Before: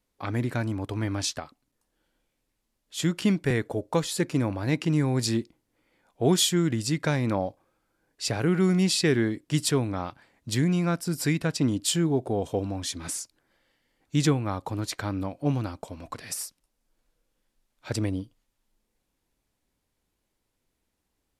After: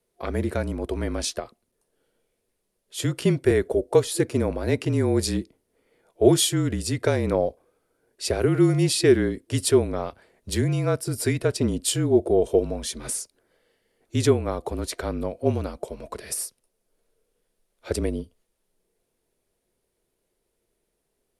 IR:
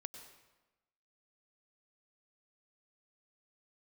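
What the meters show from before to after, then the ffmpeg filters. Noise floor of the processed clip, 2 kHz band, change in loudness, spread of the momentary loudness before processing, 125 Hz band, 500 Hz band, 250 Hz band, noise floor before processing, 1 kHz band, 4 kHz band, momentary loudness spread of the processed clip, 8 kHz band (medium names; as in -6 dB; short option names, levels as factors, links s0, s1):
-76 dBFS, 0.0 dB, +3.0 dB, 12 LU, +1.0 dB, +7.5 dB, +1.0 dB, -79 dBFS, +0.5 dB, 0.0 dB, 12 LU, +2.5 dB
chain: -af "superequalizer=7b=3.16:8b=2.24:16b=2,afreqshift=-34"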